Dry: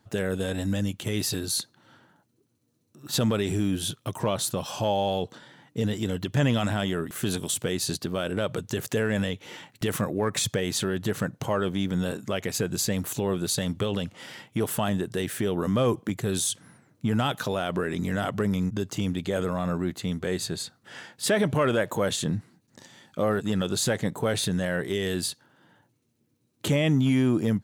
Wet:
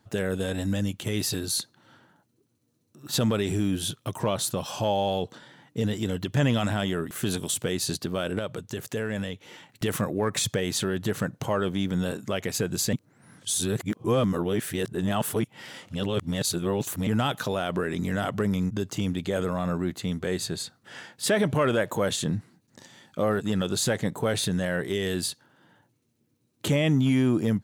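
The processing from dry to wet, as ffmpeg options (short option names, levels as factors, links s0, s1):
-filter_complex "[0:a]asplit=5[s0][s1][s2][s3][s4];[s0]atrim=end=8.392[s5];[s1]atrim=start=8.388:end=9.692,asetpts=PTS-STARTPTS,volume=0.596[s6];[s2]atrim=start=9.688:end=12.932[s7];[s3]atrim=start=12.928:end=17.072,asetpts=PTS-STARTPTS,areverse[s8];[s4]atrim=start=17.068[s9];[s5][s6]acrossfade=d=0.004:c1=hsin:c2=hsin[s10];[s10][s7]acrossfade=d=0.004:c1=hsin:c2=hsin[s11];[s11][s8]acrossfade=d=0.004:c1=hsin:c2=hsin[s12];[s12][s9]acrossfade=d=0.004:c1=hsin:c2=hsin"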